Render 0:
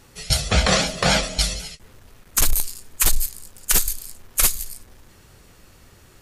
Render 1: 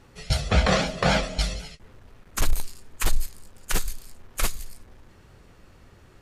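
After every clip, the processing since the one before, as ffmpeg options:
-af "lowpass=f=2.1k:p=1,volume=-1dB"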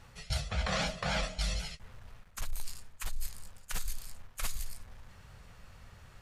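-af "equalizer=f=330:t=o:w=0.92:g=-15,areverse,acompressor=threshold=-29dB:ratio=10,areverse"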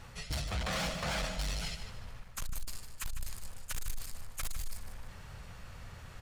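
-af "asoftclip=type=tanh:threshold=-37dB,aecho=1:1:151|302|453|604:0.316|0.12|0.0457|0.0174,volume=5dB"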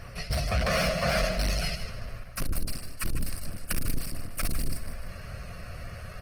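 -af "superequalizer=6b=0.282:8b=1.78:9b=0.316:13b=0.398:15b=0.251,volume=8.5dB" -ar 48000 -c:a libopus -b:a 16k

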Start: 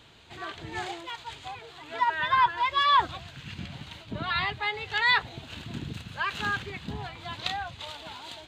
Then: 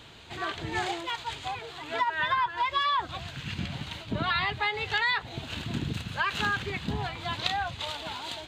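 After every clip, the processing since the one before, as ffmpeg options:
-af "acompressor=threshold=-29dB:ratio=8,volume=5dB"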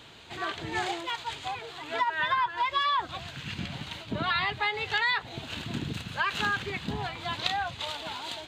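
-af "lowshelf=f=89:g=-8.5"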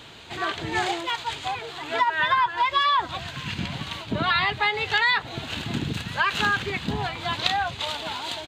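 -af "aecho=1:1:1045:0.0631,volume=5.5dB"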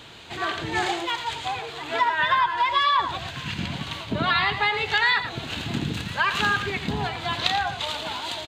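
-af "aecho=1:1:86|112:0.266|0.251"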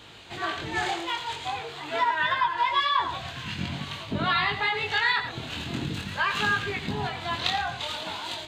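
-af "flanger=delay=19:depth=5.4:speed=0.46"

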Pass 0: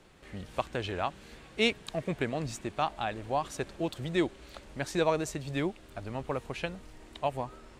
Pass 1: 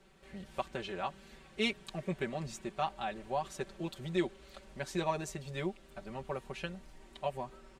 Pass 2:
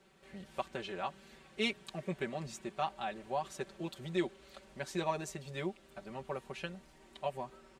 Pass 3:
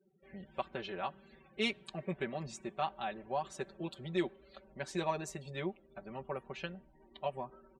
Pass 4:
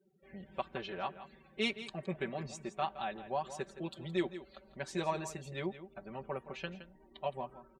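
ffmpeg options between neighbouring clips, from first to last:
-af "aecho=1:1:5.2:0.88,volume=-7.5dB"
-af "highpass=f=110:p=1,volume=-1dB"
-af "afftdn=nr=34:nf=-57"
-af "aecho=1:1:167:0.224"

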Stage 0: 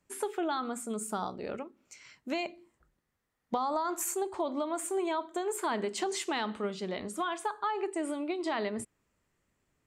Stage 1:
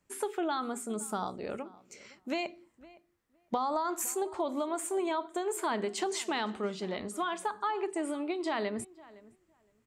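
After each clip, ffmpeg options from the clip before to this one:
-filter_complex "[0:a]asplit=2[a][b];[b]adelay=512,lowpass=f=2.3k:p=1,volume=-20.5dB,asplit=2[c][d];[d]adelay=512,lowpass=f=2.3k:p=1,volume=0.16[e];[a][c][e]amix=inputs=3:normalize=0"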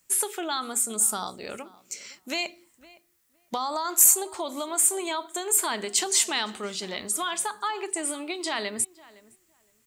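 -af "crystalizer=i=8.5:c=0,volume=-2dB"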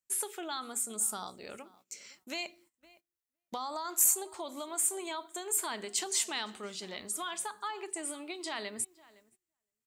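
-af "agate=range=-17dB:threshold=-54dB:ratio=16:detection=peak,volume=-8.5dB"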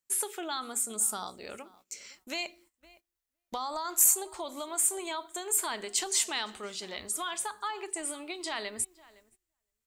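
-af "asubboost=boost=9.5:cutoff=54,volume=3dB"

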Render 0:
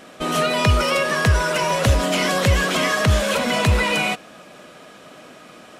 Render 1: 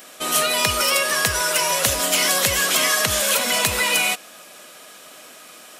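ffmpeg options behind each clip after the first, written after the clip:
-af "aemphasis=mode=production:type=riaa,volume=-2dB"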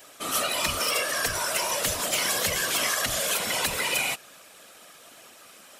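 -af "afftfilt=real='hypot(re,im)*cos(2*PI*random(0))':imag='hypot(re,im)*sin(2*PI*random(1))':win_size=512:overlap=0.75,acontrast=28,volume=-6dB"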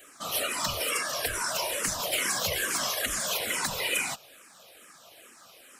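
-filter_complex "[0:a]asplit=2[a][b];[b]afreqshift=-2.3[c];[a][c]amix=inputs=2:normalize=1"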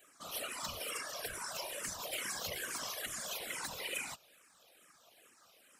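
-af "afftfilt=real='hypot(re,im)*cos(2*PI*random(0))':imag='hypot(re,im)*sin(2*PI*random(1))':win_size=512:overlap=0.75,volume=-7.5dB"

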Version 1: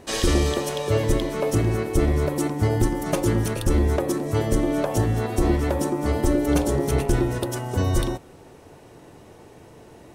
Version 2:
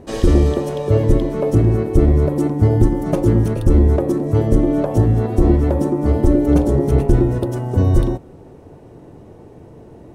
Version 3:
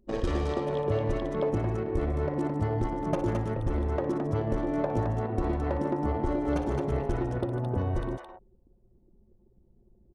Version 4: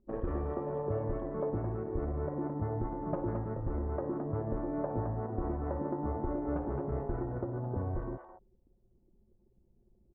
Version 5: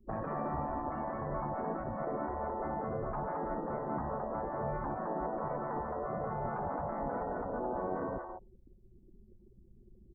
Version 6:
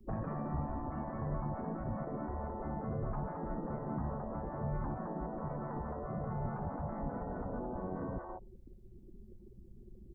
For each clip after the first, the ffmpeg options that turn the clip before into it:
-af "tiltshelf=f=970:g=8.5"
-filter_complex "[0:a]anlmdn=398,acrossover=split=660[a][b];[a]acompressor=threshold=-22dB:ratio=6[c];[b]aecho=1:1:59|149|216:0.316|0.299|0.668[d];[c][d]amix=inputs=2:normalize=0,volume=-5dB"
-af "lowpass=f=1.5k:w=0.5412,lowpass=f=1.5k:w=1.3066,volume=-6dB"
-filter_complex "[0:a]afftfilt=real='re*lt(hypot(re,im),0.0501)':imag='im*lt(hypot(re,im),0.0501)':win_size=1024:overlap=0.75,afftdn=nr=14:nf=-67,acrossover=split=180|310|1100[a][b][c][d];[d]alimiter=level_in=26.5dB:limit=-24dB:level=0:latency=1,volume=-26.5dB[e];[a][b][c][e]amix=inputs=4:normalize=0,volume=9dB"
-filter_complex "[0:a]acrossover=split=230[a][b];[b]acompressor=threshold=-47dB:ratio=6[c];[a][c]amix=inputs=2:normalize=0,volume=5dB"

